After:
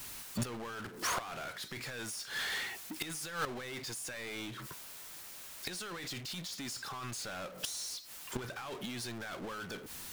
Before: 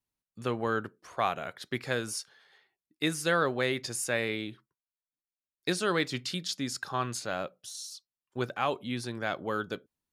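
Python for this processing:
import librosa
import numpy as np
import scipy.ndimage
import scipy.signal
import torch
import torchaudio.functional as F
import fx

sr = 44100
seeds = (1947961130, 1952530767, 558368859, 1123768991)

y = fx.curve_eq(x, sr, hz=(620.0, 1400.0, 11000.0), db=(0, 6, 9))
y = fx.over_compress(y, sr, threshold_db=-32.0, ratio=-1.0)
y = fx.gate_flip(y, sr, shuts_db=-27.0, range_db=-34)
y = fx.power_curve(y, sr, exponent=0.35)
y = F.gain(torch.from_numpy(y), -4.5).numpy()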